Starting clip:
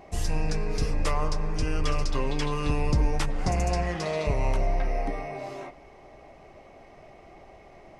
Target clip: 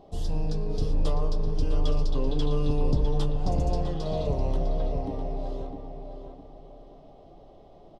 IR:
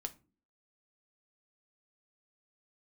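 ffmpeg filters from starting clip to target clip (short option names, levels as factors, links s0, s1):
-filter_complex "[0:a]firequalizer=gain_entry='entry(510,0);entry(2200,-22);entry(3300,1);entry(6300,-11)':delay=0.05:min_phase=1,asplit=2[s0][s1];[s1]adelay=654,lowpass=f=2800:p=1,volume=0.501,asplit=2[s2][s3];[s3]adelay=654,lowpass=f=2800:p=1,volume=0.33,asplit=2[s4][s5];[s5]adelay=654,lowpass=f=2800:p=1,volume=0.33,asplit=2[s6][s7];[s7]adelay=654,lowpass=f=2800:p=1,volume=0.33[s8];[s0][s2][s4][s6][s8]amix=inputs=5:normalize=0,asplit=2[s9][s10];[1:a]atrim=start_sample=2205[s11];[s10][s11]afir=irnorm=-1:irlink=0,volume=1.68[s12];[s9][s12]amix=inputs=2:normalize=0,volume=0.376"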